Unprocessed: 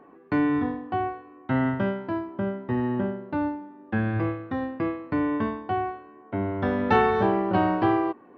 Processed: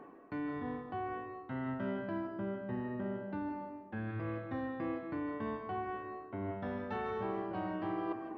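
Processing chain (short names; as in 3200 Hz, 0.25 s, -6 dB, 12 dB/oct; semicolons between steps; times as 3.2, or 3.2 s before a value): reverse; compressor 10:1, threshold -36 dBFS, peak gain reduction 20.5 dB; reverse; reverb RT60 0.60 s, pre-delay 0.115 s, DRR 5 dB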